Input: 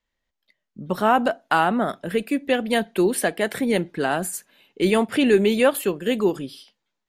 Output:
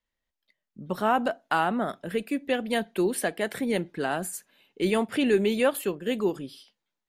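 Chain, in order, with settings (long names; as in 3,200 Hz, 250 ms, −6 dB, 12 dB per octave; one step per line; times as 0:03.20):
0:05.95–0:06.45: one half of a high-frequency compander decoder only
level −5.5 dB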